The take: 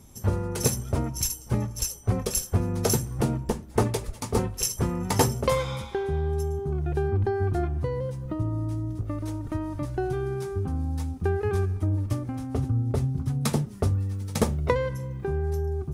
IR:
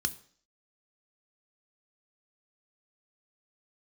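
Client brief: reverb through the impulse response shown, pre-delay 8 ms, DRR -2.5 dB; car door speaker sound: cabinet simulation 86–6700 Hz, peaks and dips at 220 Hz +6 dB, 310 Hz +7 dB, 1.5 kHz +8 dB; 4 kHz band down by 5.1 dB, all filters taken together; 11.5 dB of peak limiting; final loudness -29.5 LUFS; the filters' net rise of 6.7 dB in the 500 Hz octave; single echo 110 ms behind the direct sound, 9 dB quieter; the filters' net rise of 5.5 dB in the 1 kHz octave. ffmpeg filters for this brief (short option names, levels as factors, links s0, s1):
-filter_complex "[0:a]equalizer=f=500:t=o:g=6,equalizer=f=1000:t=o:g=4,equalizer=f=4000:t=o:g=-7.5,alimiter=limit=0.168:level=0:latency=1,aecho=1:1:110:0.355,asplit=2[s0][s1];[1:a]atrim=start_sample=2205,adelay=8[s2];[s1][s2]afir=irnorm=-1:irlink=0,volume=0.841[s3];[s0][s3]amix=inputs=2:normalize=0,highpass=86,equalizer=f=220:t=q:w=4:g=6,equalizer=f=310:t=q:w=4:g=7,equalizer=f=1500:t=q:w=4:g=8,lowpass=f=6700:w=0.5412,lowpass=f=6700:w=1.3066,volume=0.355"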